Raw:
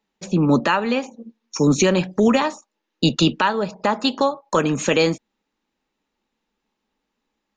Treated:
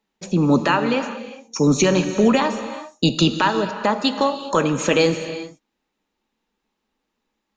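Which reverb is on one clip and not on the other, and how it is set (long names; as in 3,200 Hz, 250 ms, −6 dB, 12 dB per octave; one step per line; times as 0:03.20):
reverb whose tail is shaped and stops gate 430 ms flat, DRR 8.5 dB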